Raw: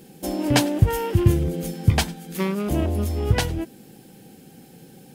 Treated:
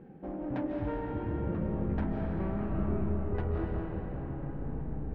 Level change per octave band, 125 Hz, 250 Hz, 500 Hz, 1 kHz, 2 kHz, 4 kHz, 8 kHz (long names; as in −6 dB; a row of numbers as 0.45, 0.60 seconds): −12.0 dB, −8.5 dB, −9.5 dB, −11.0 dB, −16.5 dB, below −30 dB, below −40 dB